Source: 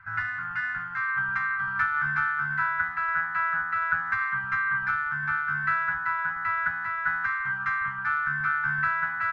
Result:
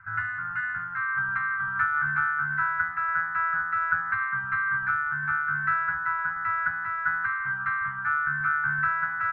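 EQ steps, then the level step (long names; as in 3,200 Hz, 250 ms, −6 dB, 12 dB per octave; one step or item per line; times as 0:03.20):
high-frequency loss of the air 300 metres
parametric band 110 Hz +4.5 dB 1.2 octaves
parametric band 1,400 Hz +6.5 dB 0.69 octaves
−3.0 dB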